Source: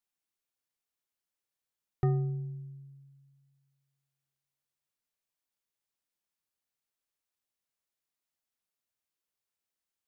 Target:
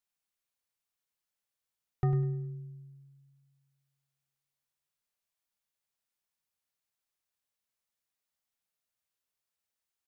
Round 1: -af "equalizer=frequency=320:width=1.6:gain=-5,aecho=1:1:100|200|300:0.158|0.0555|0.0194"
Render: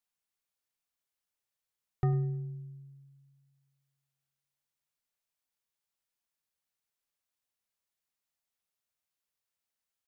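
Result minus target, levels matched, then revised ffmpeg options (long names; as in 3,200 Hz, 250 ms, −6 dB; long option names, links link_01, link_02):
echo-to-direct −7 dB
-af "equalizer=frequency=320:width=1.6:gain=-5,aecho=1:1:100|200|300|400:0.355|0.124|0.0435|0.0152"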